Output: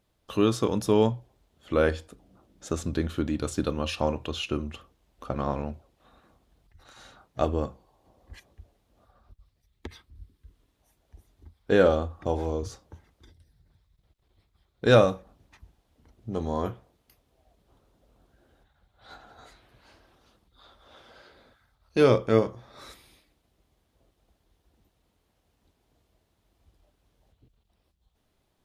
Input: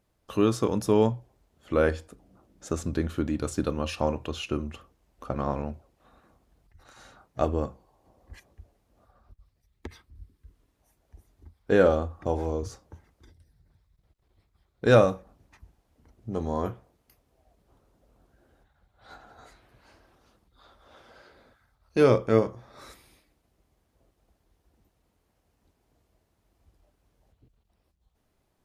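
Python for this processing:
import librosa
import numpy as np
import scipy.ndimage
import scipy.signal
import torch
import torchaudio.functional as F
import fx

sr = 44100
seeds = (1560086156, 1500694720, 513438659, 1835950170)

y = fx.peak_eq(x, sr, hz=3500.0, db=5.5, octaves=0.7)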